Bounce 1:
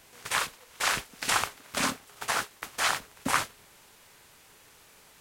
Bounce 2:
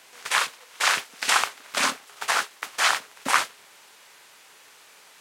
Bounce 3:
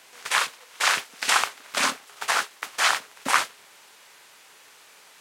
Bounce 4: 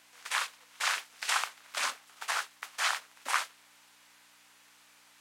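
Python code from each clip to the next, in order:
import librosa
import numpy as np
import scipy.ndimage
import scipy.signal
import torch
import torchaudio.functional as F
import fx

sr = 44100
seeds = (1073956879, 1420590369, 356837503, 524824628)

y1 = fx.weighting(x, sr, curve='A')
y1 = y1 * librosa.db_to_amplitude(5.0)
y2 = y1
y3 = fx.add_hum(y2, sr, base_hz=60, snr_db=16)
y3 = scipy.signal.sosfilt(scipy.signal.butter(2, 640.0, 'highpass', fs=sr, output='sos'), y3)
y3 = y3 * librosa.db_to_amplitude(-8.5)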